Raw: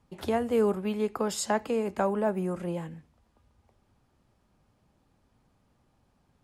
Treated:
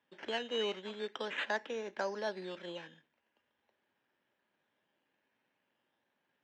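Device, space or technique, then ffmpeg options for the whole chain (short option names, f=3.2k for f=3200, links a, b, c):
circuit-bent sampling toy: -af "acrusher=samples=10:mix=1:aa=0.000001:lfo=1:lforange=6:lforate=0.42,highpass=450,equalizer=f=460:t=q:w=4:g=-3,equalizer=f=740:t=q:w=4:g=-7,equalizer=f=1.2k:t=q:w=4:g=-8,equalizer=f=1.7k:t=q:w=4:g=8,equalizer=f=3k:t=q:w=4:g=4,equalizer=f=4.5k:t=q:w=4:g=-8,lowpass=f=4.8k:w=0.5412,lowpass=f=4.8k:w=1.3066,volume=-4.5dB"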